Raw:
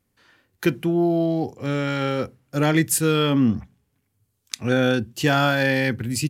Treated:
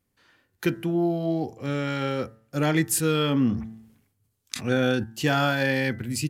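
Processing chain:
hum removal 111.1 Hz, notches 18
0:02.94–0:05.04: level that may fall only so fast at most 81 dB per second
level −3.5 dB

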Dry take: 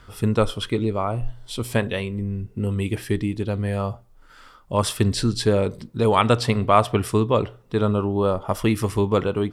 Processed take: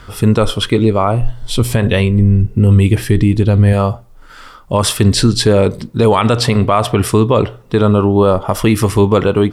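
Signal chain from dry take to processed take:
0:01.42–0:03.73: low-shelf EQ 140 Hz +10 dB
boost into a limiter +12.5 dB
level −1 dB

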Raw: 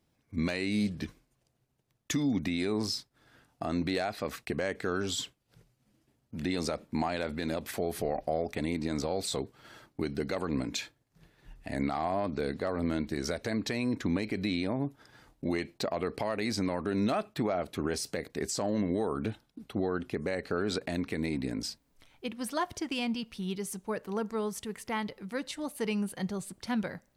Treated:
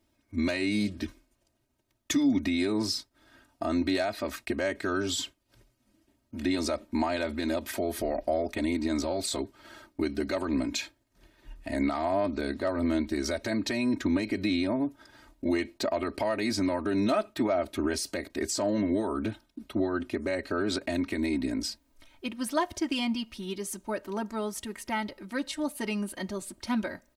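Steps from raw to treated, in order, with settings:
comb filter 3.2 ms, depth 99%

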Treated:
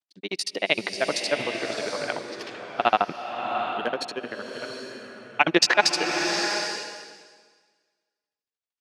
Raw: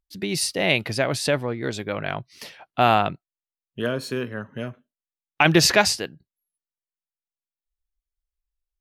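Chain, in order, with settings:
granular cloud 52 ms, grains 13 per second, spray 11 ms, pitch spread up and down by 0 semitones
transient designer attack −2 dB, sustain +10 dB
band-pass filter 350–6,200 Hz
slow-attack reverb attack 770 ms, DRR 4 dB
level +3.5 dB

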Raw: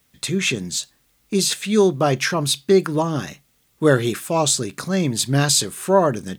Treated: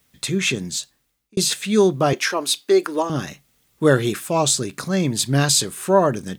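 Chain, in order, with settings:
0:00.66–0:01.37: fade out
0:02.13–0:03.10: high-pass filter 300 Hz 24 dB per octave

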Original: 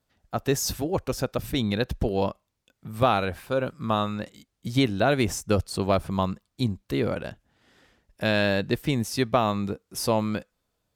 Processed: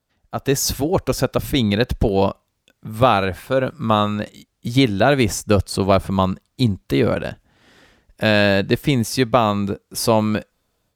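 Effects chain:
automatic gain control gain up to 8 dB
level +1 dB

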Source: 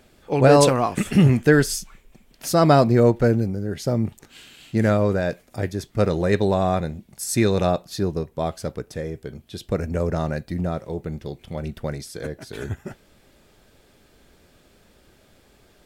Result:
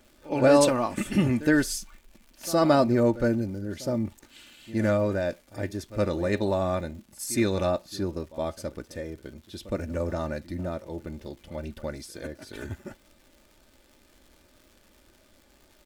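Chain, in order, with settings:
comb filter 3.4 ms, depth 55%
surface crackle 230 per second −40 dBFS
echo ahead of the sound 66 ms −17 dB
tape wow and flutter 22 cents
level −6 dB

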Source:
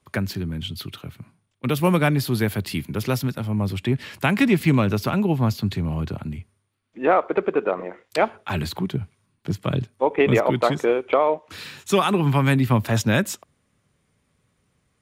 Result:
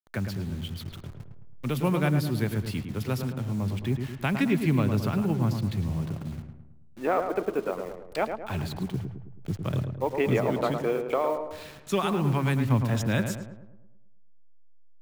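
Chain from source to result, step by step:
hold until the input has moved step −35.5 dBFS
low-shelf EQ 160 Hz +6 dB
feedback echo with a low-pass in the loop 108 ms, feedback 51%, low-pass 1,700 Hz, level −6 dB
level −8.5 dB

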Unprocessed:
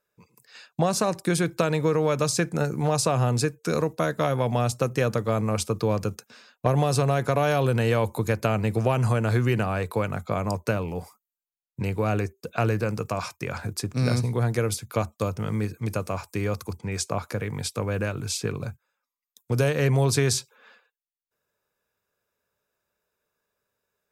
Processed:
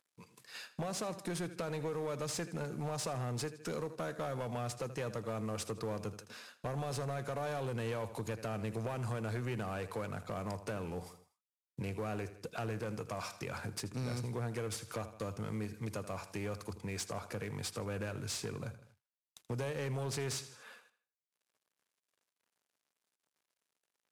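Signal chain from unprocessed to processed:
variable-slope delta modulation 64 kbit/s
high-pass filter 120 Hz 6 dB per octave
repeating echo 80 ms, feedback 40%, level −17 dB
downward compressor 2 to 1, threshold −41 dBFS, peak gain reduction 12.5 dB
soft clipping −31.5 dBFS, distortion −13 dB

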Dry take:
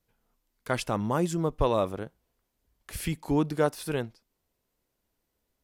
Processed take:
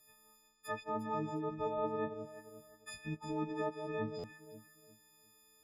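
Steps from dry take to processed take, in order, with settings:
every partial snapped to a pitch grid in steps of 6 semitones
low-shelf EQ 120 Hz −11.5 dB
reversed playback
downward compressor 8 to 1, threshold −38 dBFS, peak gain reduction 19 dB
reversed playback
treble cut that deepens with the level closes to 1,300 Hz, closed at −37 dBFS
on a send: delay that swaps between a low-pass and a high-pass 177 ms, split 1,100 Hz, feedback 57%, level −6 dB
on the sum: buffer that repeats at 0:04.18, samples 512, times 4
level +3.5 dB

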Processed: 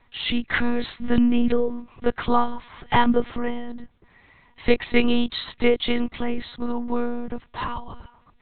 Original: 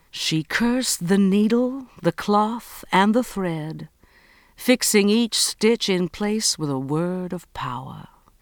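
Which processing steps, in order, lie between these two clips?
noise gate with hold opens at −50 dBFS
one-pitch LPC vocoder at 8 kHz 240 Hz

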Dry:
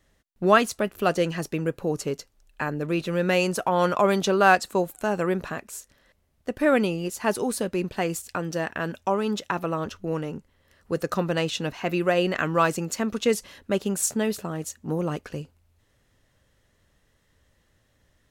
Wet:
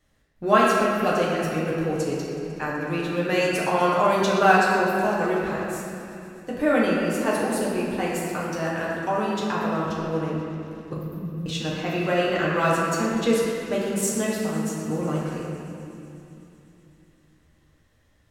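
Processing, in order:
0:10.93–0:11.46: inverse Chebyshev band-stop filter 600–5,500 Hz, stop band 60 dB
delay with a high-pass on its return 125 ms, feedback 83%, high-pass 2,200 Hz, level −17.5 dB
convolution reverb RT60 2.9 s, pre-delay 7 ms, DRR −6 dB
level −5 dB

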